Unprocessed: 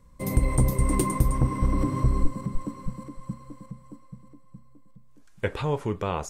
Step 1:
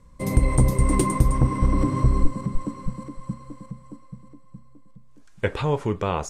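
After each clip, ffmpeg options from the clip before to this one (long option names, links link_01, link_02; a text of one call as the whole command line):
ffmpeg -i in.wav -af "lowpass=10000,volume=3.5dB" out.wav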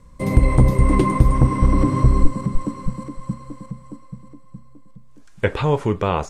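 ffmpeg -i in.wav -filter_complex "[0:a]acrossover=split=4200[link_01][link_02];[link_02]acompressor=threshold=-48dB:ratio=4:attack=1:release=60[link_03];[link_01][link_03]amix=inputs=2:normalize=0,volume=4.5dB" out.wav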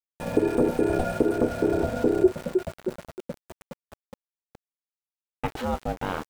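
ffmpeg -i in.wav -af "aeval=exprs='val(0)*gte(abs(val(0)),0.0447)':channel_layout=same,aeval=exprs='val(0)*sin(2*PI*370*n/s)':channel_layout=same,volume=-6.5dB" out.wav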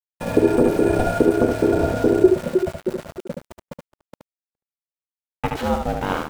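ffmpeg -i in.wav -af "agate=range=-44dB:threshold=-43dB:ratio=16:detection=peak,aecho=1:1:73:0.596,volume=5dB" out.wav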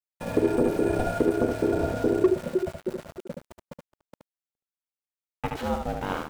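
ffmpeg -i in.wav -af "asoftclip=type=hard:threshold=-5.5dB,volume=-6.5dB" out.wav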